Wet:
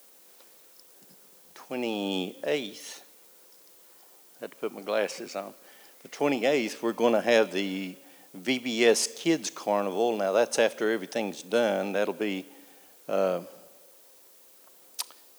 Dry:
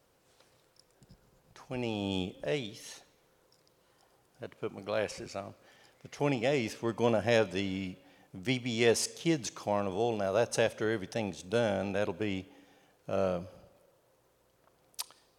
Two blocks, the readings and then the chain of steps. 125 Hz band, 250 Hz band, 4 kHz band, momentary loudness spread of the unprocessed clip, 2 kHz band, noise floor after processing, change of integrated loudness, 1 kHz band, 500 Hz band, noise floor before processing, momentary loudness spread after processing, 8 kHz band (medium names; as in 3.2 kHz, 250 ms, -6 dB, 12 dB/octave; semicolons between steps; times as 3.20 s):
-6.5 dB, +4.0 dB, +5.0 dB, 16 LU, +5.0 dB, -56 dBFS, +4.5 dB, +5.0 dB, +5.0 dB, -69 dBFS, 18 LU, +5.0 dB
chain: high-pass 210 Hz 24 dB/octave; added noise blue -61 dBFS; trim +5 dB